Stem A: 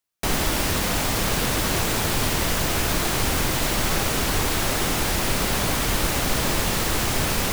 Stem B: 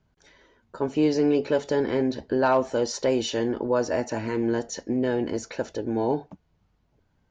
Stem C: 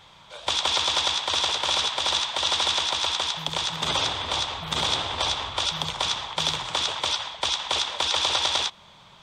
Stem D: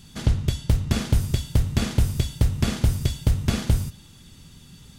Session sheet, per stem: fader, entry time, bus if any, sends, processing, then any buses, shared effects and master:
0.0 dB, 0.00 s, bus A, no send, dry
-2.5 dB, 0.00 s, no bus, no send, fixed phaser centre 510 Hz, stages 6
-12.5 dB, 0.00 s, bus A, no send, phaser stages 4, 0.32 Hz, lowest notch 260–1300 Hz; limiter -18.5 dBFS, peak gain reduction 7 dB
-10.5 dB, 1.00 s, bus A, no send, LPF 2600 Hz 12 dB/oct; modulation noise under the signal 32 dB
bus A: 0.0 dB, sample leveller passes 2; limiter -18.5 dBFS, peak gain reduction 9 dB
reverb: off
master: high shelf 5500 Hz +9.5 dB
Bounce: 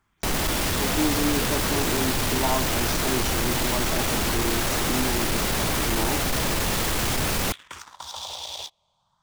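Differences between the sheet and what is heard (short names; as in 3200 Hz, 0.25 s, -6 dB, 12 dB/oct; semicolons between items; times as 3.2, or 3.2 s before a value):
stem D: muted; master: missing high shelf 5500 Hz +9.5 dB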